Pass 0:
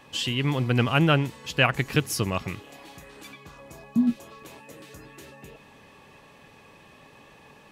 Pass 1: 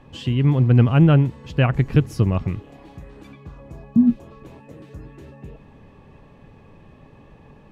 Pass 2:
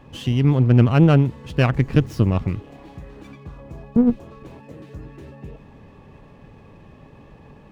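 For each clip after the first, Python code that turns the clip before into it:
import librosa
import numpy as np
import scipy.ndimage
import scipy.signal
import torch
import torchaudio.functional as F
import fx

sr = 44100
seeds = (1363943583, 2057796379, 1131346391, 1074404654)

y1 = fx.tilt_eq(x, sr, slope=-4.0)
y1 = F.gain(torch.from_numpy(y1), -1.5).numpy()
y2 = fx.diode_clip(y1, sr, knee_db=-18.0)
y2 = fx.running_max(y2, sr, window=3)
y2 = F.gain(torch.from_numpy(y2), 2.0).numpy()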